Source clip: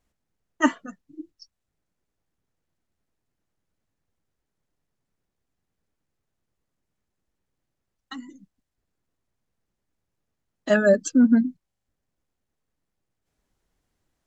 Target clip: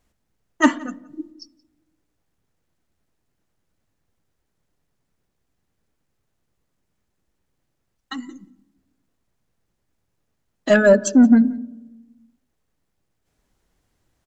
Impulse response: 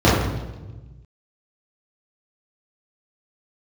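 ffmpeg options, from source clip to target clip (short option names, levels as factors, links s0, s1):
-filter_complex "[0:a]acontrast=86,asplit=2[s0][s1];[s1]adelay=174.9,volume=0.0708,highshelf=f=4000:g=-3.94[s2];[s0][s2]amix=inputs=2:normalize=0,asplit=2[s3][s4];[1:a]atrim=start_sample=2205,adelay=32[s5];[s4][s5]afir=irnorm=-1:irlink=0,volume=0.00447[s6];[s3][s6]amix=inputs=2:normalize=0,volume=0.891"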